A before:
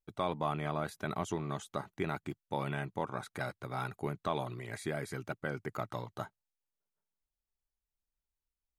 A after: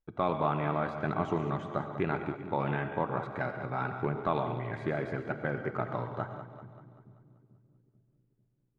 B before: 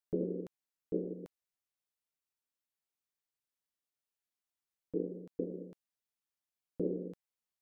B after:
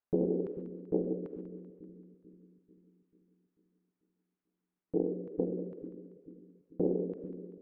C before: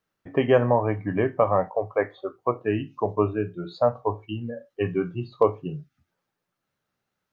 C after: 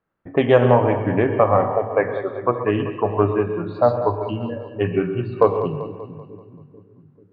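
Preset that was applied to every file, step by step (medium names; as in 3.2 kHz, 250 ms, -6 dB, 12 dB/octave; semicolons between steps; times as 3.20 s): gated-style reverb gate 160 ms rising, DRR 8.5 dB; level-controlled noise filter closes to 1.6 kHz, open at -13.5 dBFS; on a send: two-band feedback delay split 320 Hz, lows 441 ms, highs 193 ms, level -11 dB; on the sum: loudspeaker Doppler distortion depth 0.11 ms; trim +4.5 dB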